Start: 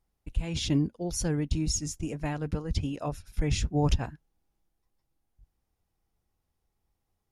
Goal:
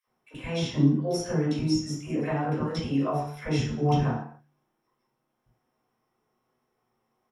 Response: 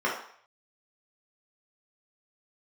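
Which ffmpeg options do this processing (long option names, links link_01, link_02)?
-filter_complex "[0:a]bandreject=frequency=73.57:width_type=h:width=4,bandreject=frequency=147.14:width_type=h:width=4,acrossover=split=270[link_01][link_02];[link_02]acompressor=threshold=-37dB:ratio=6[link_03];[link_01][link_03]amix=inputs=2:normalize=0,acrossover=split=490|1800[link_04][link_05][link_06];[link_05]adelay=40[link_07];[link_04]adelay=70[link_08];[link_08][link_07][link_06]amix=inputs=3:normalize=0[link_09];[1:a]atrim=start_sample=2205,afade=type=out:start_time=0.35:duration=0.01,atrim=end_sample=15876[link_10];[link_09][link_10]afir=irnorm=-1:irlink=0"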